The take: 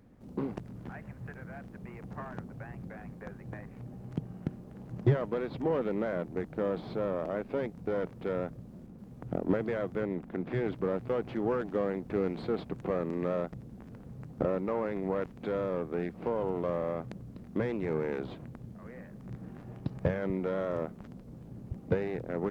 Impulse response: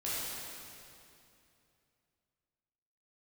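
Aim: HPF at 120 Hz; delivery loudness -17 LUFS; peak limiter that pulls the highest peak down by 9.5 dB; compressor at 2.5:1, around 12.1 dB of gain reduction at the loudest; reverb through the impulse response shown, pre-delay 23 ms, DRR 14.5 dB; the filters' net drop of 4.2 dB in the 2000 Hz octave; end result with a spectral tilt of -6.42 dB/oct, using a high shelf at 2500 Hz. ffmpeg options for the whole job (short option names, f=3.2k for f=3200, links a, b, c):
-filter_complex "[0:a]highpass=120,equalizer=f=2k:t=o:g=-8.5,highshelf=f=2.5k:g=6.5,acompressor=threshold=-41dB:ratio=2.5,alimiter=level_in=10dB:limit=-24dB:level=0:latency=1,volume=-10dB,asplit=2[a][b];[1:a]atrim=start_sample=2205,adelay=23[c];[b][c]afir=irnorm=-1:irlink=0,volume=-20dB[d];[a][d]amix=inputs=2:normalize=0,volume=28.5dB"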